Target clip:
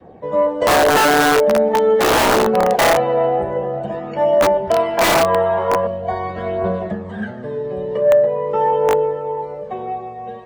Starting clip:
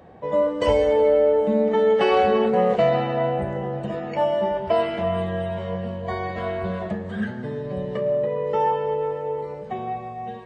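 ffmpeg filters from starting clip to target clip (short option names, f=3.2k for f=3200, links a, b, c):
-filter_complex "[0:a]aphaser=in_gain=1:out_gain=1:delay=2.5:decay=0.41:speed=0.45:type=triangular,asettb=1/sr,asplit=3[a][b][c];[a]atrim=end=4.974[d];[b]atrim=start=4.97:end=5.87,asetpts=PTS-STARTPTS,afade=t=in:d=0.004:c=qsin,afade=t=out:st=0.896:d=0.004:c=qsin,equalizer=f=1.1k:w=1.1:g=15[e];[c]atrim=start=5.866[f];[d][e]acrossfade=d=0.004:c1=hsin:c2=qsin[g];[g][f]acrossfade=d=0.004:c1=qsin:c2=hsin,aeval=exprs='(mod(3.98*val(0)+1,2)-1)/3.98':c=same,adynamicequalizer=threshold=0.0501:dfrequency=740:dqfactor=0.96:tfrequency=740:tqfactor=0.96:attack=5:release=100:ratio=0.375:range=2:mode=boostabove:tftype=bell,acrossover=split=240|1200[h][i][j];[i]acontrast=75[k];[h][k][j]amix=inputs=3:normalize=0,volume=-2dB"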